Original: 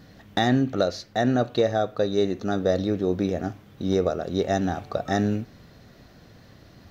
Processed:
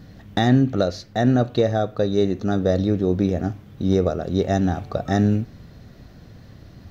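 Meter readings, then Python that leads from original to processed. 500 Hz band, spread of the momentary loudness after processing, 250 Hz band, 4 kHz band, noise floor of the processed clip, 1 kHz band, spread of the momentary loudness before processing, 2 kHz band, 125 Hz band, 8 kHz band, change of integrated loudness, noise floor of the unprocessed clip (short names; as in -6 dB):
+2.0 dB, 8 LU, +4.5 dB, 0.0 dB, -46 dBFS, +1.0 dB, 8 LU, 0.0 dB, +7.5 dB, n/a, +3.5 dB, -52 dBFS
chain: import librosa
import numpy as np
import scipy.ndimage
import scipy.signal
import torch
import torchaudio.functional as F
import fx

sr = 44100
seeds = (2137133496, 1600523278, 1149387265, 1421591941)

y = fx.low_shelf(x, sr, hz=230.0, db=10.0)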